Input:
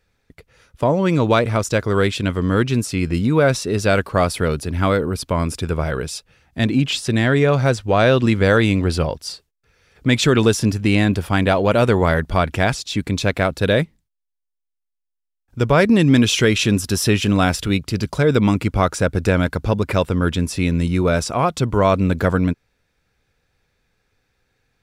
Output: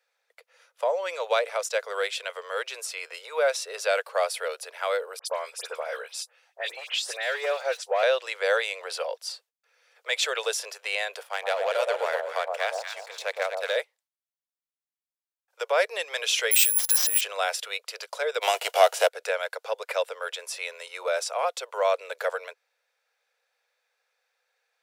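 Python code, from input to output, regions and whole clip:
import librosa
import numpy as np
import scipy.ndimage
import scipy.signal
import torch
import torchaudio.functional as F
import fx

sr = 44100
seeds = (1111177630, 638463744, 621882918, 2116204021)

y = fx.chain(x, sr, fx.clip_hard(threshold_db=-10.5),
    fx.dispersion(late='highs', ms=70.0, hz=2700.0), at=(5.19, 8.03))
y = fx.chain(y, sr, fx.power_curve(exponent=1.4),
    fx.echo_alternate(ms=119, hz=970.0, feedback_pct=52, wet_db=-2.0), at=(11.23, 13.77))
y = fx.chain(y, sr, fx.over_compress(threshold_db=-19.0, ratio=-0.5),
    fx.air_absorb(metres=70.0),
    fx.resample_bad(factor=4, down='none', up='zero_stuff'), at=(16.51, 17.21))
y = fx.envelope_flatten(y, sr, power=0.6, at=(18.41, 19.07), fade=0.02)
y = fx.small_body(y, sr, hz=(340.0, 680.0, 2900.0), ring_ms=20, db=12, at=(18.41, 19.07), fade=0.02)
y = scipy.signal.sosfilt(scipy.signal.butter(12, 480.0, 'highpass', fs=sr, output='sos'), y)
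y = fx.dynamic_eq(y, sr, hz=1100.0, q=1.8, threshold_db=-34.0, ratio=4.0, max_db=-5)
y = y * 10.0 ** (-5.0 / 20.0)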